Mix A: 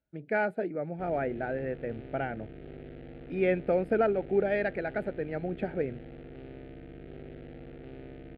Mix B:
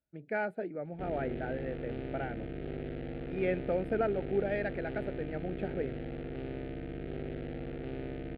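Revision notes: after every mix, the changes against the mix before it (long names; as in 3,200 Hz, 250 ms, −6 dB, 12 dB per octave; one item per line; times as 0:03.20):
speech −5.0 dB
background +6.0 dB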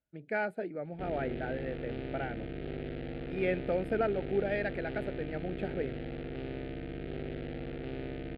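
master: add high-shelf EQ 3,400 Hz +9.5 dB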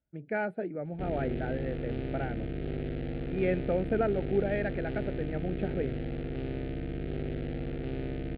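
speech: add moving average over 7 samples
master: add low-shelf EQ 280 Hz +7.5 dB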